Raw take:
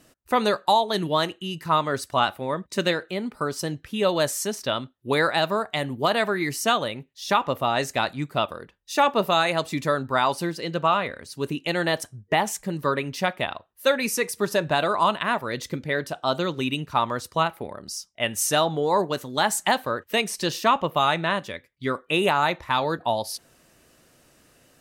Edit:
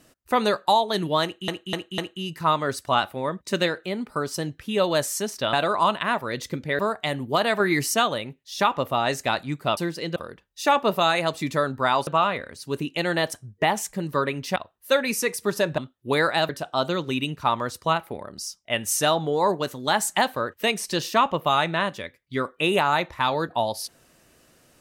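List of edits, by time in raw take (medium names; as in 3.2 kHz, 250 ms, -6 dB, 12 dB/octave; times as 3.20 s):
1.23–1.48 s: loop, 4 plays
4.78–5.49 s: swap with 14.73–15.99 s
6.30–6.64 s: gain +4 dB
10.38–10.77 s: move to 8.47 s
13.26–13.51 s: delete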